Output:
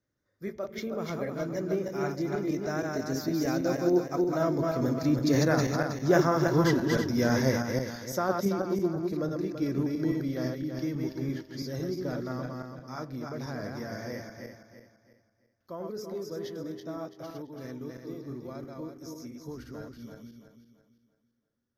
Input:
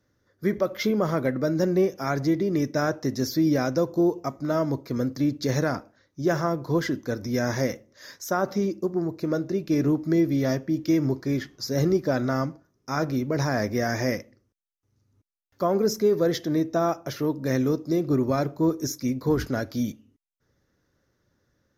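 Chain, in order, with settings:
feedback delay that plays each chunk backwards 162 ms, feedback 59%, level −2.5 dB
source passing by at 0:06.29, 11 m/s, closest 16 metres

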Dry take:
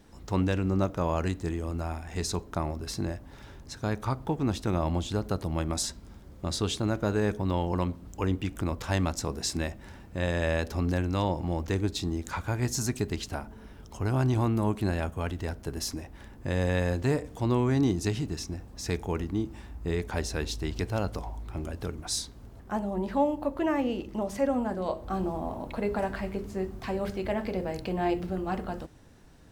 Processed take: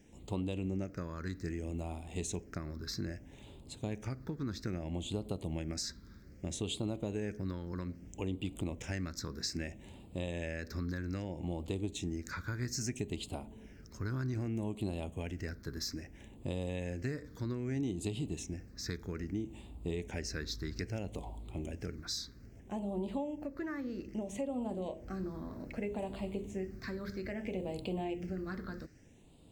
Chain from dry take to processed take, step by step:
low-shelf EQ 110 Hz −8.5 dB
downward compressor, threshold −30 dBFS, peak gain reduction 9 dB
all-pass phaser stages 6, 0.62 Hz, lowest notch 750–1,600 Hz
level −2 dB

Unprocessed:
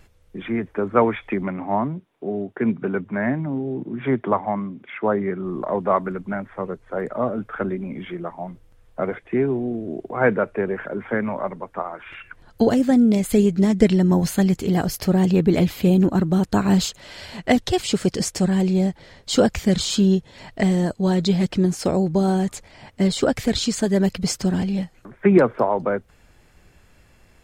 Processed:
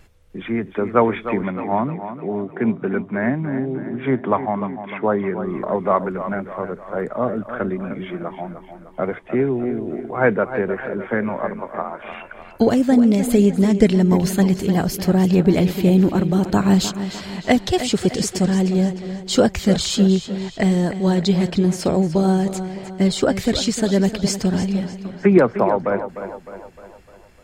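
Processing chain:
tape delay 304 ms, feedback 53%, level −10 dB, low-pass 6,000 Hz
level +1.5 dB

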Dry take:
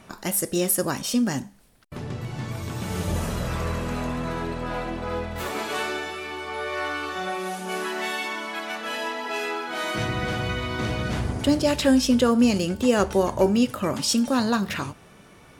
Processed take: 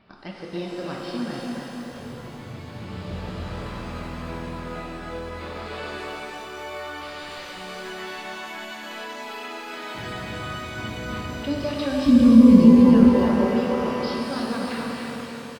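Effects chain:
0:07.01–0:07.58: wrap-around overflow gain 27.5 dB
repeating echo 292 ms, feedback 52%, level −5 dB
downsampling to 11,025 Hz
0:12.06–0:13.11: low shelf with overshoot 360 Hz +14 dB, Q 3
boost into a limiter −1 dB
reverb with rising layers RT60 2.9 s, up +12 semitones, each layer −8 dB, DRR −1 dB
level −8.5 dB

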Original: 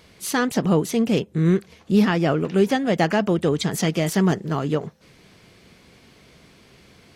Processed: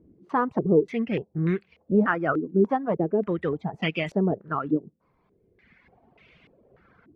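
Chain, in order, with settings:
reverb reduction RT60 1.8 s
low-pass on a step sequencer 3.4 Hz 310–2,600 Hz
level −5.5 dB

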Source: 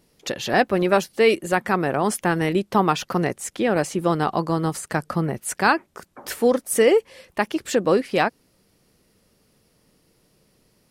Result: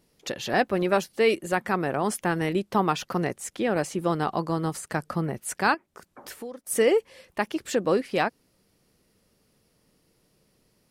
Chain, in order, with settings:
0:05.74–0:06.67: downward compressor 3 to 1, threshold −36 dBFS, peak gain reduction 16.5 dB
level −4.5 dB

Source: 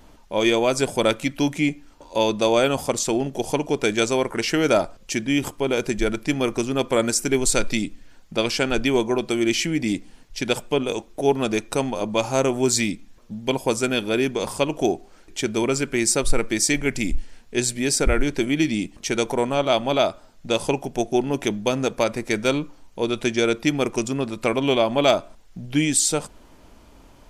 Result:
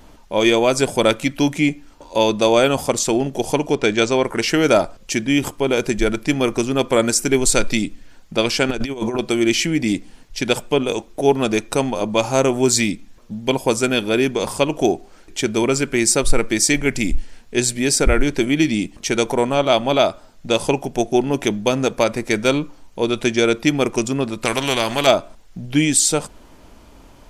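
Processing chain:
0:03.75–0:04.24: low-pass filter 5,800 Hz 12 dB per octave
0:08.69–0:09.19: compressor whose output falls as the input rises −25 dBFS, ratio −0.5
0:24.45–0:25.07: every bin compressed towards the loudest bin 2 to 1
level +4 dB

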